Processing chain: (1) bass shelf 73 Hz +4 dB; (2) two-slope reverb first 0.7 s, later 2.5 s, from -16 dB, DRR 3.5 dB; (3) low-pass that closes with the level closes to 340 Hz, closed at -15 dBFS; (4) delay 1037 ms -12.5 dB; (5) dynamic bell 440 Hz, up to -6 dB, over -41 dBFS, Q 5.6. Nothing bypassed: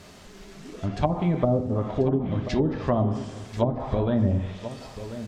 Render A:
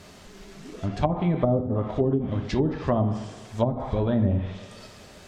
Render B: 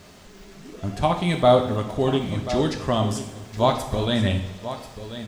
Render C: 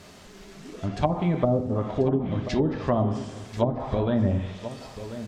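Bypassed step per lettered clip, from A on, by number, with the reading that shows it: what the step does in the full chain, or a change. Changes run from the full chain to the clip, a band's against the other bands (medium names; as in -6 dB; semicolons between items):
4, momentary loudness spread change +5 LU; 3, 4 kHz band +10.0 dB; 1, 125 Hz band -1.5 dB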